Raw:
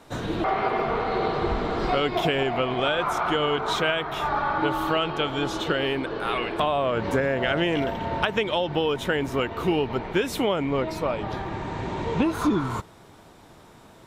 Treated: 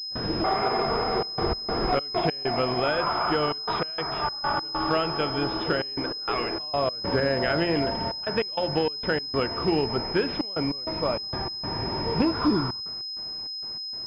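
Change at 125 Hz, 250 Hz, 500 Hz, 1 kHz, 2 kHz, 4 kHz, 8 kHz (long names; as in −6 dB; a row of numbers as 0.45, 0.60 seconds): −1.5 dB, −1.0 dB, −2.0 dB, −2.0 dB, −3.5 dB, +3.5 dB, below −15 dB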